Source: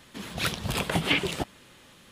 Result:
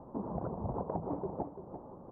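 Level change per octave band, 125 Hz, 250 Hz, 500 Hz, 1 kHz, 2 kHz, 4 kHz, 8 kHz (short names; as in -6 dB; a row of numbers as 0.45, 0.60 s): -7.5 dB, -6.0 dB, -4.0 dB, -5.5 dB, under -35 dB, under -40 dB, under -40 dB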